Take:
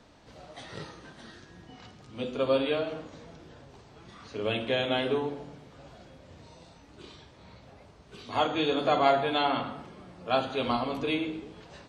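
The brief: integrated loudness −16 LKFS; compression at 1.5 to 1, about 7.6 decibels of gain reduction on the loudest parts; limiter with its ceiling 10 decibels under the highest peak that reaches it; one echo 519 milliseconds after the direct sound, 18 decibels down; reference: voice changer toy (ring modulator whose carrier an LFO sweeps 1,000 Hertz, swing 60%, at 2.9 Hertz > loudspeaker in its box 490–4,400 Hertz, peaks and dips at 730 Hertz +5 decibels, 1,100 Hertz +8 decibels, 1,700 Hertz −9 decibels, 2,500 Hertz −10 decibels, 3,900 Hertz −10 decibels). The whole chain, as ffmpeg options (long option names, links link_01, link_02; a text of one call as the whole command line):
ffmpeg -i in.wav -af "acompressor=threshold=-39dB:ratio=1.5,alimiter=level_in=3.5dB:limit=-24dB:level=0:latency=1,volume=-3.5dB,aecho=1:1:519:0.126,aeval=exprs='val(0)*sin(2*PI*1000*n/s+1000*0.6/2.9*sin(2*PI*2.9*n/s))':channel_layout=same,highpass=490,equalizer=frequency=730:width_type=q:width=4:gain=5,equalizer=frequency=1100:width_type=q:width=4:gain=8,equalizer=frequency=1700:width_type=q:width=4:gain=-9,equalizer=frequency=2500:width_type=q:width=4:gain=-10,equalizer=frequency=3900:width_type=q:width=4:gain=-10,lowpass=frequency=4400:width=0.5412,lowpass=frequency=4400:width=1.3066,volume=25.5dB" out.wav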